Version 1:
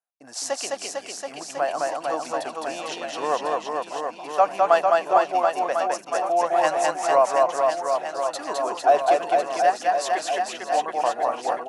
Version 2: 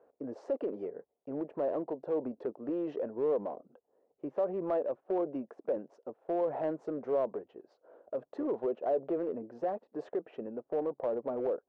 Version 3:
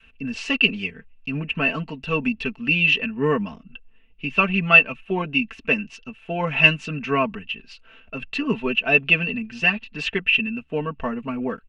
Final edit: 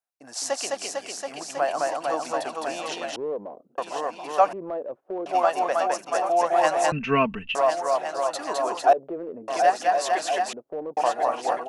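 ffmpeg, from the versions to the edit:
-filter_complex "[1:a]asplit=4[a][b][c][d];[0:a]asplit=6[e][f][g][h][i][j];[e]atrim=end=3.162[k];[a]atrim=start=3.158:end=3.782[l];[f]atrim=start=3.778:end=4.532[m];[b]atrim=start=4.528:end=5.262[n];[g]atrim=start=5.258:end=6.922[o];[2:a]atrim=start=6.918:end=7.552[p];[h]atrim=start=7.548:end=8.932[q];[c]atrim=start=8.928:end=9.482[r];[i]atrim=start=9.478:end=10.532[s];[d]atrim=start=10.528:end=10.972[t];[j]atrim=start=10.968[u];[k][l]acrossfade=d=0.004:c1=hsin:c2=hsin[v];[v][m]acrossfade=d=0.004:c1=hsin:c2=hsin[w];[w][n]acrossfade=d=0.004:c1=hsin:c2=hsin[x];[x][o]acrossfade=d=0.004:c1=hsin:c2=hsin[y];[y][p]acrossfade=d=0.004:c1=hsin:c2=hsin[z];[z][q]acrossfade=d=0.004:c1=hsin:c2=hsin[aa];[aa][r]acrossfade=d=0.004:c1=hsin:c2=hsin[ab];[ab][s]acrossfade=d=0.004:c1=hsin:c2=hsin[ac];[ac][t]acrossfade=d=0.004:c1=hsin:c2=hsin[ad];[ad][u]acrossfade=d=0.004:c1=hsin:c2=hsin"

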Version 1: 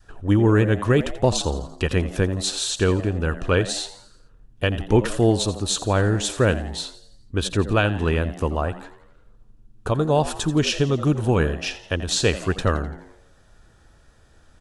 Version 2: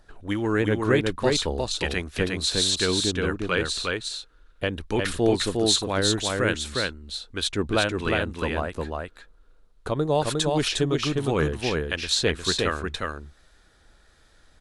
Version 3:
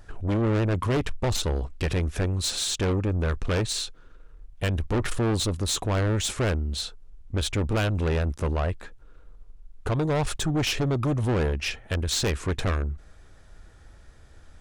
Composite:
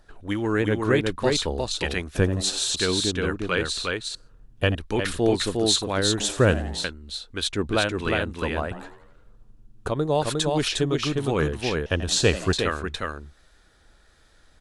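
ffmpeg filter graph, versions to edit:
-filter_complex "[0:a]asplit=5[a][b][c][d][e];[1:a]asplit=6[f][g][h][i][j][k];[f]atrim=end=2.152[l];[a]atrim=start=2.148:end=2.742[m];[g]atrim=start=2.738:end=4.152[n];[b]atrim=start=4.148:end=4.752[o];[h]atrim=start=4.748:end=6.202[p];[c]atrim=start=6.198:end=6.842[q];[i]atrim=start=6.838:end=8.712[r];[d]atrim=start=8.708:end=9.882[s];[j]atrim=start=9.878:end=11.862[t];[e]atrim=start=11.858:end=12.532[u];[k]atrim=start=12.528[v];[l][m]acrossfade=d=0.004:c1=hsin:c2=hsin[w];[w][n]acrossfade=d=0.004:c1=hsin:c2=hsin[x];[x][o]acrossfade=d=0.004:c1=hsin:c2=hsin[y];[y][p]acrossfade=d=0.004:c1=hsin:c2=hsin[z];[z][q]acrossfade=d=0.004:c1=hsin:c2=hsin[aa];[aa][r]acrossfade=d=0.004:c1=hsin:c2=hsin[ab];[ab][s]acrossfade=d=0.004:c1=hsin:c2=hsin[ac];[ac][t]acrossfade=d=0.004:c1=hsin:c2=hsin[ad];[ad][u]acrossfade=d=0.004:c1=hsin:c2=hsin[ae];[ae][v]acrossfade=d=0.004:c1=hsin:c2=hsin"

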